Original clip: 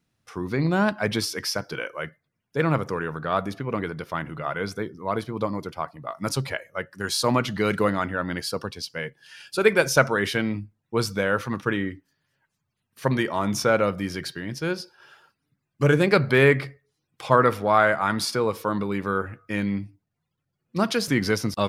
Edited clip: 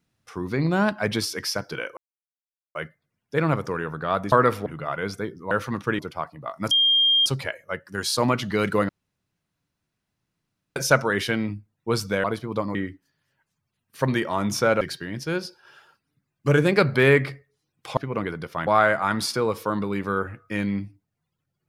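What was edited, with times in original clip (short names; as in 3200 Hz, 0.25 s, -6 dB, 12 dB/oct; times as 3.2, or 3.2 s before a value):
1.97 insert silence 0.78 s
3.54–4.24 swap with 17.32–17.66
5.09–5.6 swap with 11.3–11.78
6.32 add tone 3210 Hz -15.5 dBFS 0.55 s
7.95–9.82 room tone
13.84–14.16 cut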